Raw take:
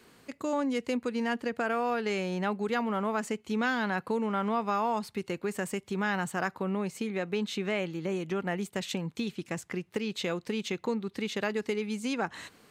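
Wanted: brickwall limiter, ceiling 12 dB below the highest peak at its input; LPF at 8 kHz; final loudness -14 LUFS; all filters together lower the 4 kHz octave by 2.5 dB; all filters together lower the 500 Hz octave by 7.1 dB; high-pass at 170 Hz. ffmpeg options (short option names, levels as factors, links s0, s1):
-af "highpass=170,lowpass=8000,equalizer=f=500:t=o:g=-9,equalizer=f=4000:t=o:g=-3,volume=20,alimiter=limit=0.631:level=0:latency=1"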